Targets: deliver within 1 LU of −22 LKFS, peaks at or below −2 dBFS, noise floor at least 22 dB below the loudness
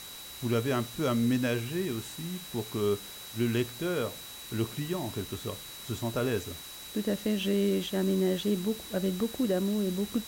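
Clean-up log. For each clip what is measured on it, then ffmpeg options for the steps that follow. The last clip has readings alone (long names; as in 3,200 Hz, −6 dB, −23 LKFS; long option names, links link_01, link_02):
interfering tone 3,900 Hz; level of the tone −46 dBFS; background noise floor −44 dBFS; target noise floor −53 dBFS; integrated loudness −31.0 LKFS; sample peak −17.5 dBFS; target loudness −22.0 LKFS
→ -af "bandreject=frequency=3900:width=30"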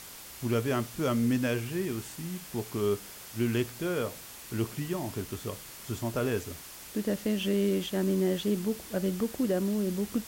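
interfering tone none found; background noise floor −46 dBFS; target noise floor −53 dBFS
→ -af "afftdn=noise_reduction=7:noise_floor=-46"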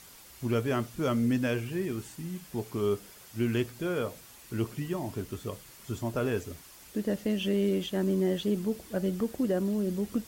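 background noise floor −52 dBFS; target noise floor −54 dBFS
→ -af "afftdn=noise_reduction=6:noise_floor=-52"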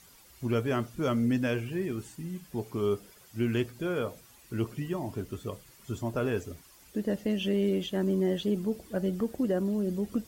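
background noise floor −57 dBFS; integrated loudness −31.5 LKFS; sample peak −18.5 dBFS; target loudness −22.0 LKFS
→ -af "volume=9.5dB"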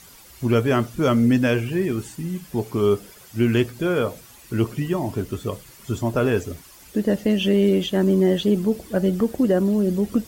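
integrated loudness −22.0 LKFS; sample peak −9.0 dBFS; background noise floor −47 dBFS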